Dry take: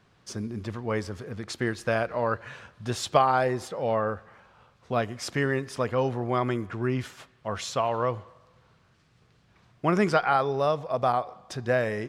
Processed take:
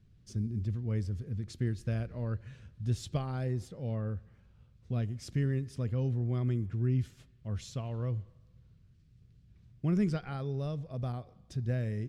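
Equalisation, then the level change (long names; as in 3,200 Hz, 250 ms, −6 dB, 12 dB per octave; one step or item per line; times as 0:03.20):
guitar amp tone stack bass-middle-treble 10-0-1
low-shelf EQ 330 Hz +7.5 dB
+8.5 dB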